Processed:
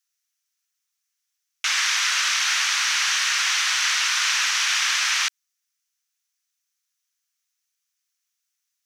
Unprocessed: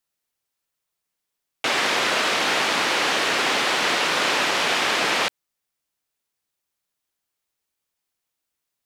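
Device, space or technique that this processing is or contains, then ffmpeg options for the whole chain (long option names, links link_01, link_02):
headphones lying on a table: -af "highpass=frequency=1300:width=0.5412,highpass=frequency=1300:width=1.3066,equalizer=frequency=6000:width_type=o:width=0.43:gain=10"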